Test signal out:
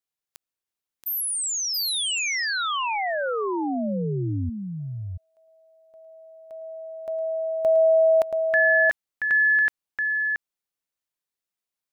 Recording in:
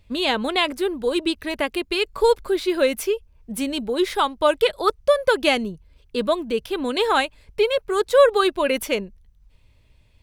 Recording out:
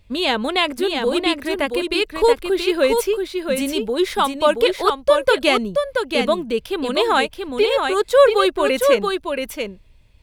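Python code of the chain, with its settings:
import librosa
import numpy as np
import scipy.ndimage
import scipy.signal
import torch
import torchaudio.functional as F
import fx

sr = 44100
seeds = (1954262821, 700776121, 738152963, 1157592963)

y = x + 10.0 ** (-5.0 / 20.0) * np.pad(x, (int(678 * sr / 1000.0), 0))[:len(x)]
y = F.gain(torch.from_numpy(y), 2.0).numpy()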